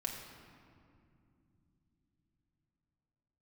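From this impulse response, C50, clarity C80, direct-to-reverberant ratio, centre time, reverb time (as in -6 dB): 4.0 dB, 5.0 dB, -0.5 dB, 59 ms, 2.5 s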